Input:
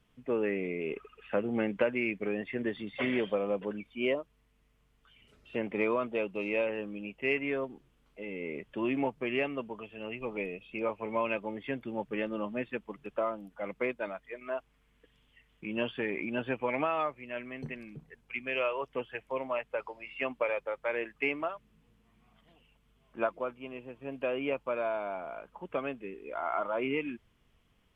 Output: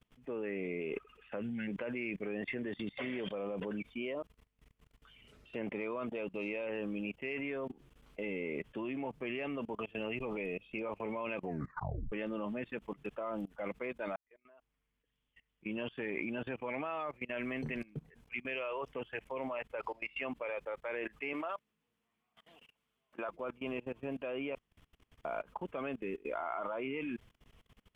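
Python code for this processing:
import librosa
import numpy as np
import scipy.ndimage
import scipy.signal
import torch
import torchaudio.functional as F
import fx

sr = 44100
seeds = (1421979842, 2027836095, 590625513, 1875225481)

y = fx.spec_box(x, sr, start_s=1.42, length_s=0.26, low_hz=240.0, high_hz=1400.0, gain_db=-18)
y = fx.highpass(y, sr, hz=510.0, slope=6, at=(21.33, 23.29))
y = fx.edit(y, sr, fx.tape_stop(start_s=11.36, length_s=0.76),
    fx.fade_in_span(start_s=14.16, length_s=3.24),
    fx.room_tone_fill(start_s=24.55, length_s=0.7), tone=tone)
y = fx.level_steps(y, sr, step_db=23)
y = y * 10.0 ** (8.0 / 20.0)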